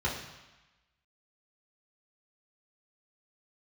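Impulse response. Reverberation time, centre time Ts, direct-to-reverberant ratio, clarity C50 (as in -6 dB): 1.1 s, 41 ms, -5.0 dB, 5.0 dB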